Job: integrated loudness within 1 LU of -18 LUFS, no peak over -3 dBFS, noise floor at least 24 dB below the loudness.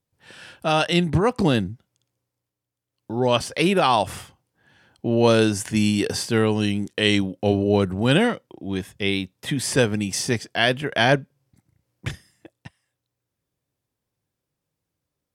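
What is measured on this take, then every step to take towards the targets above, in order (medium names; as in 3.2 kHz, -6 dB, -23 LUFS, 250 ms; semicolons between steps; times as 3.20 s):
loudness -21.5 LUFS; peak level -3.0 dBFS; loudness target -18.0 LUFS
-> trim +3.5 dB; peak limiter -3 dBFS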